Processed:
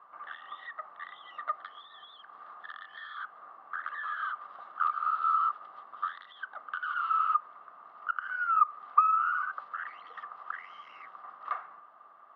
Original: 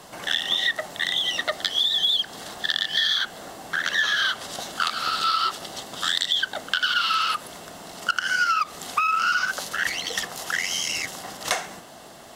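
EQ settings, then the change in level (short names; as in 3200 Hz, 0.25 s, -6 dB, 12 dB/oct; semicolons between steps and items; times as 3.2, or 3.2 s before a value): band-pass 1200 Hz, Q 13; air absorption 400 m; +6.5 dB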